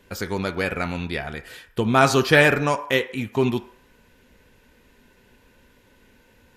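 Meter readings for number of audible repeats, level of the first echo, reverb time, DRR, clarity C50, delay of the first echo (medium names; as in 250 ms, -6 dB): no echo, no echo, 0.60 s, 8.0 dB, 14.0 dB, no echo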